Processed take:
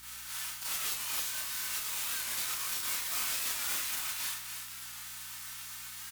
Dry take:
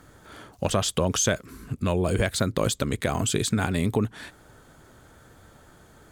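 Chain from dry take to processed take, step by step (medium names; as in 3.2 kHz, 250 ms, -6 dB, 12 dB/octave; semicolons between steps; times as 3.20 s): formants flattened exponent 0.1; high-pass 1 kHz 24 dB/octave; harmonic-percussive split harmonic -5 dB; compressor with a negative ratio -32 dBFS, ratio -0.5; saturation -34.5 dBFS, distortion -6 dB; Schroeder reverb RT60 0.37 s, combs from 25 ms, DRR -6 dB; hum 60 Hz, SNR 25 dB; on a send: delay 275 ms -8.5 dB; on the sum: Chebyshev shaper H 2 -11 dB, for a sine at -17.5 dBFS; warped record 45 rpm, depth 100 cents; trim -2.5 dB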